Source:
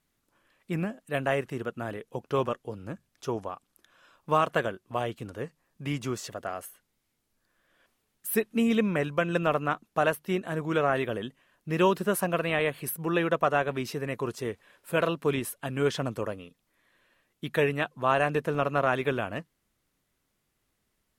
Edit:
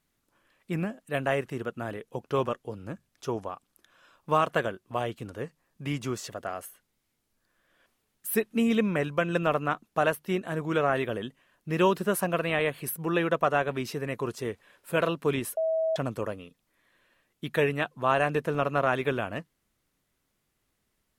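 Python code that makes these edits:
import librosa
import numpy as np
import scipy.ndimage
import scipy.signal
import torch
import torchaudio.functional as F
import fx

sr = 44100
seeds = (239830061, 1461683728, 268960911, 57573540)

y = fx.edit(x, sr, fx.bleep(start_s=15.57, length_s=0.39, hz=645.0, db=-23.5), tone=tone)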